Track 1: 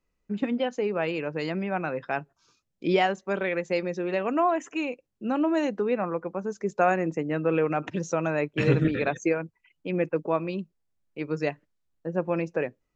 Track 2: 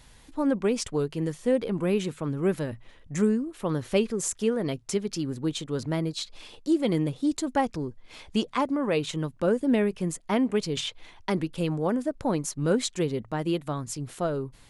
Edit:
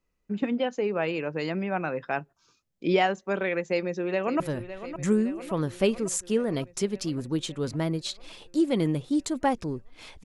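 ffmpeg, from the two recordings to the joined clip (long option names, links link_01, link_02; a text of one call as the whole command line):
ffmpeg -i cue0.wav -i cue1.wav -filter_complex "[0:a]apad=whole_dur=10.24,atrim=end=10.24,atrim=end=4.402[link_01];[1:a]atrim=start=2.518:end=8.36[link_02];[link_01][link_02]acrossfade=duration=0.004:curve1=hsin:curve2=hsin,asplit=2[link_03][link_04];[link_04]afade=type=in:start_time=3.67:duration=0.01,afade=type=out:start_time=4.4:duration=0.01,aecho=0:1:560|1120|1680|2240|2800|3360|3920|4480|5040|5600:0.251189|0.175832|0.123082|0.0861577|0.0603104|0.0422173|0.0295521|0.0206865|0.0144805|0.0101364[link_05];[link_03][link_05]amix=inputs=2:normalize=0" out.wav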